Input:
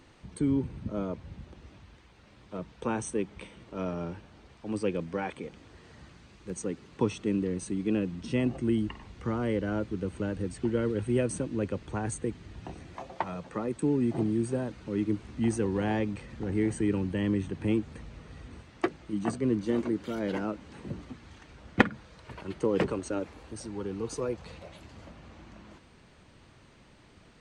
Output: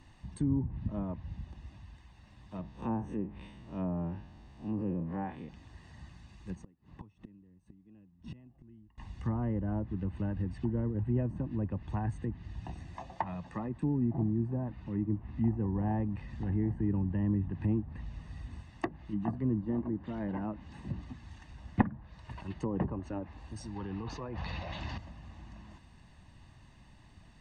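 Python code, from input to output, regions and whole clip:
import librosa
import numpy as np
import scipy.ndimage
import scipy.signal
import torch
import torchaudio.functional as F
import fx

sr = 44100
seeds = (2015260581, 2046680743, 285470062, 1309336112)

y = fx.chain(x, sr, fx.spec_blur(span_ms=92.0),
    fx.peak_eq(hz=320.0, db=4.5, octaves=2.3), at=(2.61, 5.49))
y = fx.chain(y, sr, fx.lowpass(hz=1200.0, slope=6),
    fx.gate_flip(shuts_db=-31.0, range_db=-26), at=(6.55, 8.98))
y = fx.chain(y, sr, fx.bass_treble(bass_db=0, treble_db=-11),
    fx.notch(hz=1600.0, q=26.0), at=(14.53, 15.86))
y = fx.chain(y, sr, fx.lowpass(hz=6200.0, slope=24),
    fx.low_shelf(hz=360.0, db=-6.5),
    fx.env_flatten(amount_pct=70), at=(23.76, 24.98))
y = fx.env_lowpass_down(y, sr, base_hz=960.0, full_db=-26.0)
y = fx.low_shelf(y, sr, hz=120.0, db=7.5)
y = y + 0.64 * np.pad(y, (int(1.1 * sr / 1000.0), 0))[:len(y)]
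y = F.gain(torch.from_numpy(y), -5.5).numpy()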